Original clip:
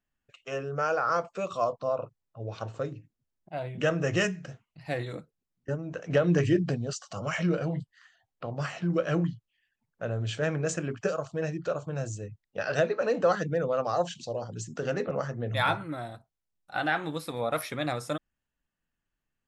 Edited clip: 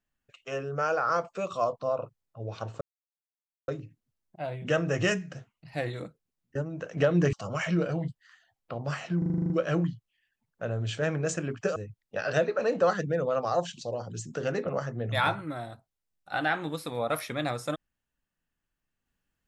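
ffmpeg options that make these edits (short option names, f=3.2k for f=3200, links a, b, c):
-filter_complex "[0:a]asplit=12[a][b][c][d][e][f][g][h][i][j][k][l];[a]atrim=end=2.81,asetpts=PTS-STARTPTS,afade=t=out:st=2.806:d=0.004:c=hsin,apad=pad_dur=0.87[m];[b]atrim=start=2.81:end=6.462,asetpts=PTS-STARTPTS,afade=t=in:d=0.004:c=hsin[n];[c]atrim=start=7.048:end=8.942[o];[d]atrim=start=8.898:end=8.942[p];[e]atrim=start=8.898:end=8.942[q];[f]atrim=start=8.898:end=8.942[r];[g]atrim=start=8.898:end=8.942[s];[h]atrim=start=8.898:end=8.942[t];[i]atrim=start=8.898:end=8.942[u];[j]atrim=start=8.898:end=8.942[v];[k]atrim=start=8.898:end=11.162[w];[l]atrim=start=12.178[x];[m][n]concat=n=2:v=0:a=1[y];[y][o]acrossfade=d=0.004:c1=hsin:c2=hsin[z];[z][p]acrossfade=d=0.004:c1=hsin:c2=hsin[aa];[aa][q]acrossfade=d=0.004:c1=hsin:c2=hsin[ab];[ab][r]acrossfade=d=0.004:c1=hsin:c2=hsin[ac];[ac][s]acrossfade=d=0.004:c1=hsin:c2=hsin[ad];[ad][t]acrossfade=d=0.004:c1=hsin:c2=hsin[ae];[ae][u]acrossfade=d=0.004:c1=hsin:c2=hsin[af];[af][v]acrossfade=d=0.004:c1=hsin:c2=hsin[ag];[ag][w]acrossfade=d=0.004:c1=hsin:c2=hsin[ah];[ah][x]acrossfade=d=0.004:c1=hsin:c2=hsin"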